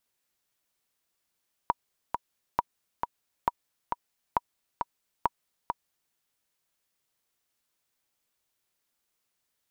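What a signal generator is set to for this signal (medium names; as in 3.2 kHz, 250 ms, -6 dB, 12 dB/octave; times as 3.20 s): metronome 135 bpm, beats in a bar 2, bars 5, 959 Hz, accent 5 dB -10 dBFS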